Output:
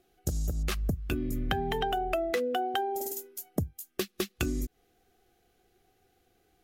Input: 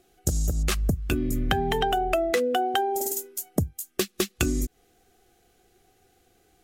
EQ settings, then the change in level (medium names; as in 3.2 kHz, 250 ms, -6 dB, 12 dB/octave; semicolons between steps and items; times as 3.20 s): peaking EQ 8 kHz -6 dB 0.81 oct; -5.5 dB